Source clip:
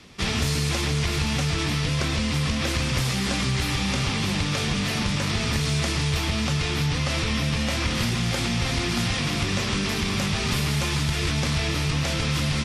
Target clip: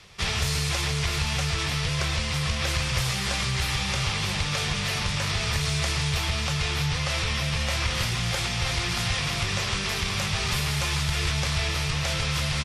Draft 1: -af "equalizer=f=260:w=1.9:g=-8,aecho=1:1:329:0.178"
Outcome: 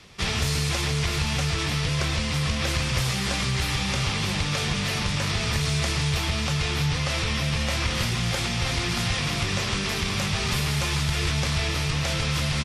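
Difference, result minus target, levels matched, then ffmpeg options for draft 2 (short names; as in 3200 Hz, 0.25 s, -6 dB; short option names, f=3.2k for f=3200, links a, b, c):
250 Hz band +3.5 dB
-af "equalizer=f=260:w=1.9:g=-18.5,aecho=1:1:329:0.178"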